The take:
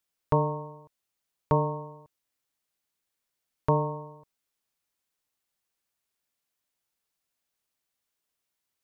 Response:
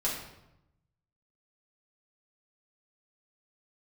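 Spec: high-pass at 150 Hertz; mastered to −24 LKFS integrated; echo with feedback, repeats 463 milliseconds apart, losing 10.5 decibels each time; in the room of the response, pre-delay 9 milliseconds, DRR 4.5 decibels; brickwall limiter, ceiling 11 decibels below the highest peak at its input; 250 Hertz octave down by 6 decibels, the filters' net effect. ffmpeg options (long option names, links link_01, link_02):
-filter_complex "[0:a]highpass=150,equalizer=frequency=250:width_type=o:gain=-8,alimiter=limit=-23dB:level=0:latency=1,aecho=1:1:463|926|1389:0.299|0.0896|0.0269,asplit=2[link_01][link_02];[1:a]atrim=start_sample=2205,adelay=9[link_03];[link_02][link_03]afir=irnorm=-1:irlink=0,volume=-11dB[link_04];[link_01][link_04]amix=inputs=2:normalize=0,volume=11.5dB"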